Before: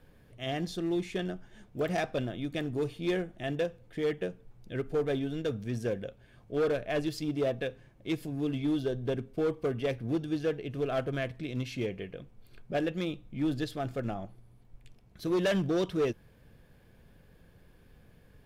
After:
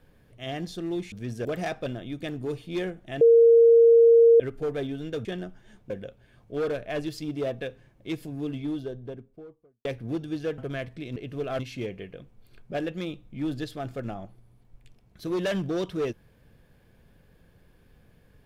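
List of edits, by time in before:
1.12–1.77 s: swap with 5.57–5.90 s
3.53–4.72 s: bleep 463 Hz -12 dBFS
8.28–9.85 s: studio fade out
10.58–11.01 s: move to 11.59 s

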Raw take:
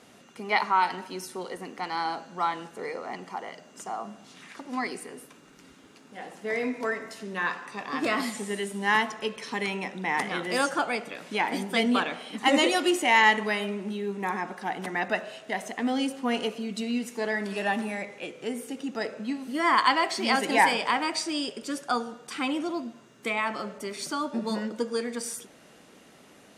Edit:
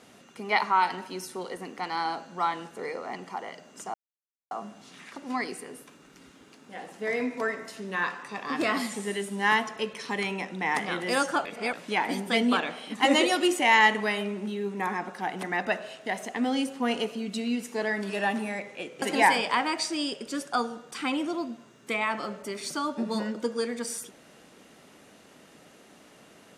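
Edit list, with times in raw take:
3.94 s: insert silence 0.57 s
10.88–11.16 s: reverse
18.45–20.38 s: delete

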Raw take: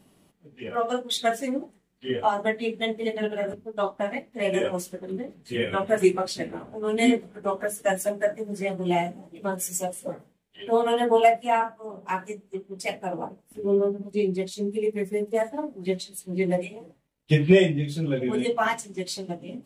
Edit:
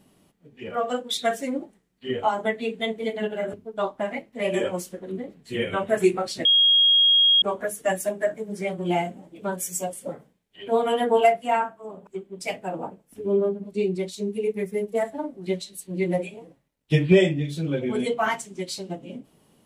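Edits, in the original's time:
6.45–7.42 s: bleep 3.27 kHz -14 dBFS
12.07–12.46 s: delete

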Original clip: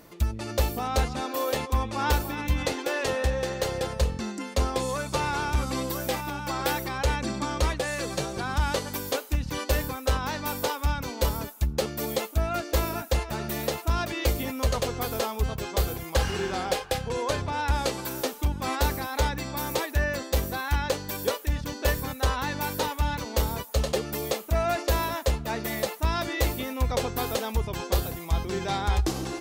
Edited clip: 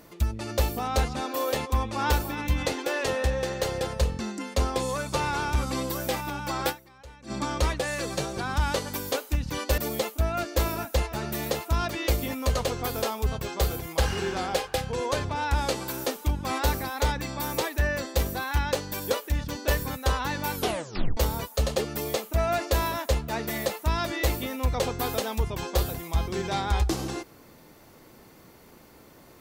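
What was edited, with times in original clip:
6.69–7.32 s: dip -22 dB, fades 0.30 s exponential
9.78–11.95 s: delete
22.71 s: tape stop 0.63 s

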